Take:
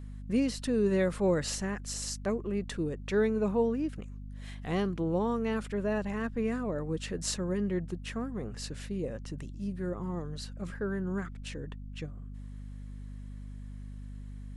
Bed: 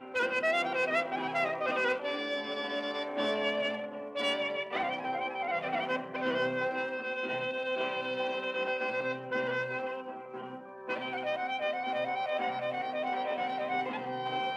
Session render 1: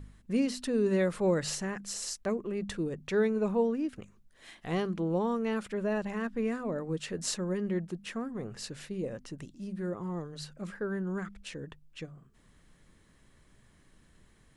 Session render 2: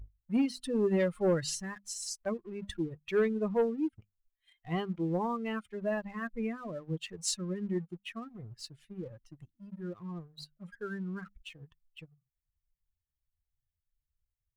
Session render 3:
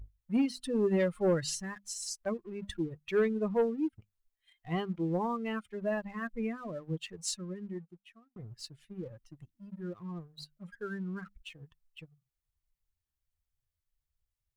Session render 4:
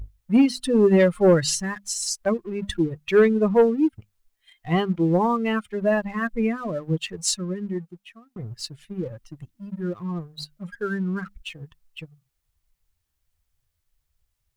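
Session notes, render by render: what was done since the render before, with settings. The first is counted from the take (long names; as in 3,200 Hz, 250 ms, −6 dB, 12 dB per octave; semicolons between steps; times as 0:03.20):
hum removal 50 Hz, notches 5
spectral dynamics exaggerated over time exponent 2; leveller curve on the samples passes 1
0:06.91–0:08.36: fade out
level +11.5 dB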